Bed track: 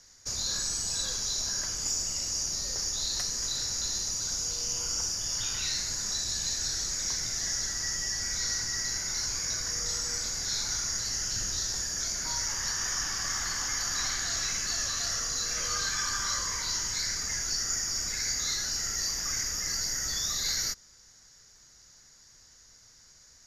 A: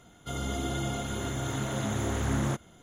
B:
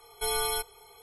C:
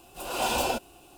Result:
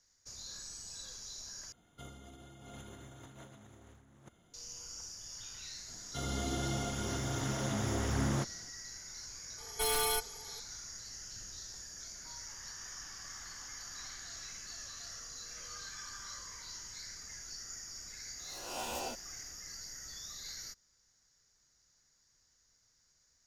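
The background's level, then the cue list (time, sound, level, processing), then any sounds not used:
bed track −15.5 dB
0:01.72: overwrite with A −17 dB + compressor whose output falls as the input rises −35 dBFS, ratio −0.5
0:05.88: mix in A −4 dB
0:09.58: mix in B −0.5 dB + wave folding −25.5 dBFS
0:18.37: mix in C −15 dB + peak hold with a rise ahead of every peak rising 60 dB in 0.51 s

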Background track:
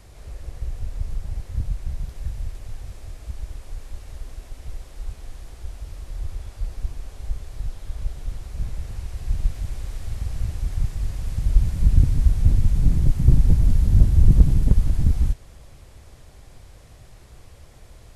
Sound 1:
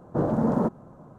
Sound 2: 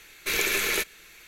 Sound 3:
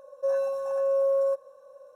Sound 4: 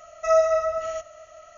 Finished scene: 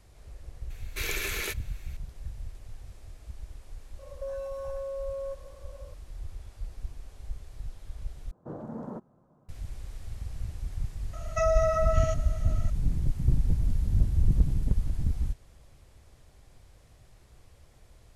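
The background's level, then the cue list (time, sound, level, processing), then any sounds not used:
background track −9.5 dB
0:00.70: mix in 2 −7.5 dB
0:03.99: mix in 3 −0.5 dB + downward compressor, threshold −34 dBFS
0:08.31: overwrite with 1 −15.5 dB
0:11.13: mix in 4 + downward compressor, threshold −22 dBFS

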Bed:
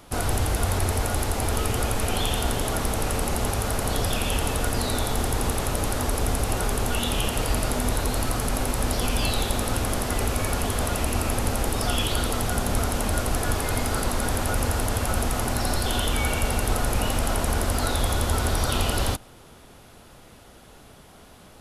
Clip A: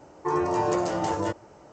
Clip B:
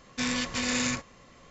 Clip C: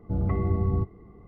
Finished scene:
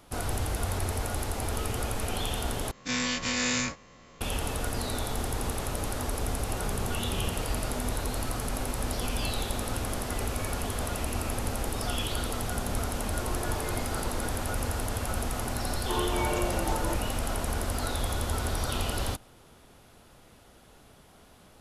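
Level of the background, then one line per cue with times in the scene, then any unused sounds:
bed −6.5 dB
0:02.71: overwrite with B −3 dB + every bin's largest magnitude spread in time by 60 ms
0:06.54: mix in C −12 dB
0:12.95: mix in A −15.5 dB
0:15.64: mix in A −6 dB

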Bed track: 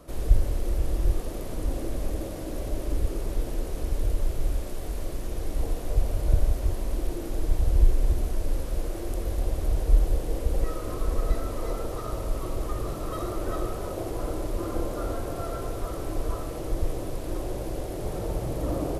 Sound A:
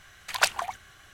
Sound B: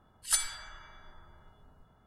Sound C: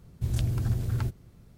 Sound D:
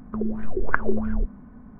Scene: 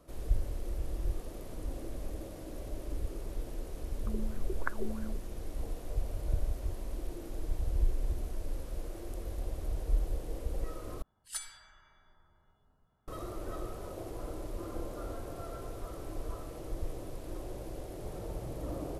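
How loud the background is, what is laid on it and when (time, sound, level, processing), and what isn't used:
bed track −10 dB
0:03.93: mix in D −13 dB
0:11.02: overwrite with B −11.5 dB
not used: A, C

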